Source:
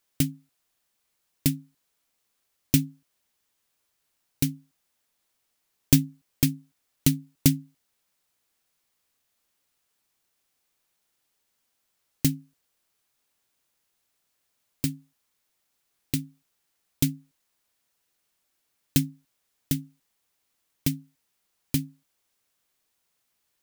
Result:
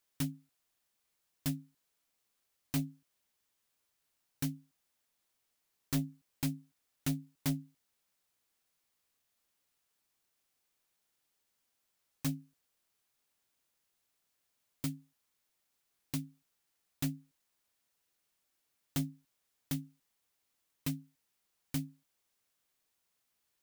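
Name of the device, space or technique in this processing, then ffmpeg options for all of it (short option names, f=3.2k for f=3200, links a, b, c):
saturation between pre-emphasis and de-emphasis: -af "highshelf=f=5.3k:g=10.5,asoftclip=type=tanh:threshold=-19.5dB,highshelf=f=5.3k:g=-10.5,volume=-5dB"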